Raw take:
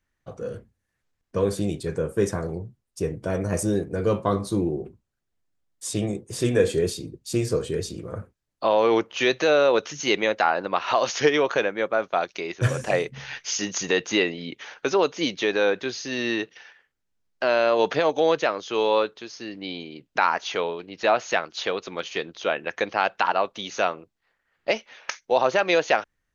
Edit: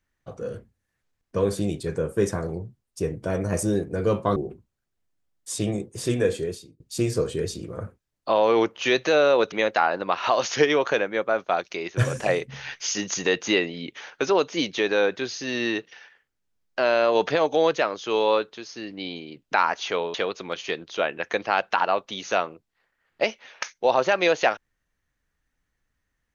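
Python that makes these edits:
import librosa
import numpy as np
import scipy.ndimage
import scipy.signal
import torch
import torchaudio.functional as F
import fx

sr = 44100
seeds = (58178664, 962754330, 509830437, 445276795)

y = fx.edit(x, sr, fx.cut(start_s=4.36, length_s=0.35),
    fx.fade_out_span(start_s=6.11, length_s=1.04, curve='qsin'),
    fx.cut(start_s=9.87, length_s=0.29),
    fx.cut(start_s=20.78, length_s=0.83), tone=tone)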